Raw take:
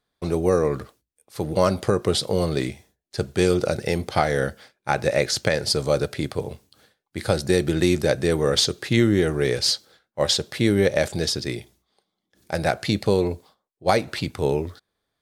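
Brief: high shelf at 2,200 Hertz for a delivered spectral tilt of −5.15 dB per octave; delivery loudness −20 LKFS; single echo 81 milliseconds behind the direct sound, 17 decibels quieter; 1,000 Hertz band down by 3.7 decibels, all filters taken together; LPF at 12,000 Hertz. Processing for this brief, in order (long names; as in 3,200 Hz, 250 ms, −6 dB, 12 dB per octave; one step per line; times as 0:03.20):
low-pass filter 12,000 Hz
parametric band 1,000 Hz −4.5 dB
high-shelf EQ 2,200 Hz −4.5 dB
single-tap delay 81 ms −17 dB
level +4 dB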